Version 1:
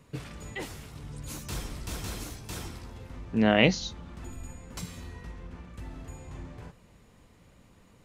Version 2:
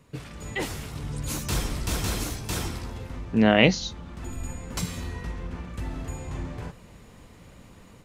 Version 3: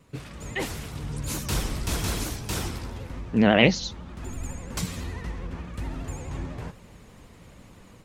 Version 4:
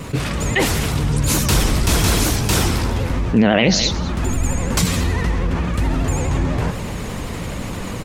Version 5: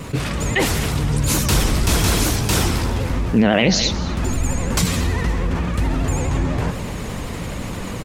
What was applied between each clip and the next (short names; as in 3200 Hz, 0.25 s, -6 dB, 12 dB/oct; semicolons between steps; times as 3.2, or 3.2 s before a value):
AGC gain up to 8.5 dB
vibrato 12 Hz 95 cents
echo 0.206 s -23 dB; maximiser +12 dB; fast leveller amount 50%; gain -4 dB
feedback echo 0.26 s, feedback 59%, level -21 dB; gain -1 dB